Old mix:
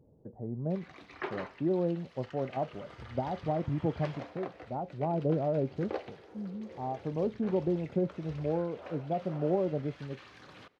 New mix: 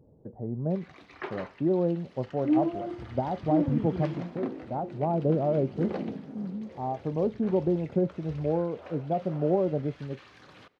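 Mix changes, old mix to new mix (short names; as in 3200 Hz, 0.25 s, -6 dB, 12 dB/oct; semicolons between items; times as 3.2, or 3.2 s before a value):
speech +4.0 dB; second sound: unmuted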